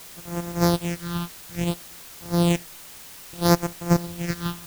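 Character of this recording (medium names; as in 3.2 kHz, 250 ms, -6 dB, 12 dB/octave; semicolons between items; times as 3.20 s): a buzz of ramps at a fixed pitch in blocks of 256 samples; phasing stages 6, 0.6 Hz, lowest notch 540–4000 Hz; a quantiser's noise floor 8-bit, dither triangular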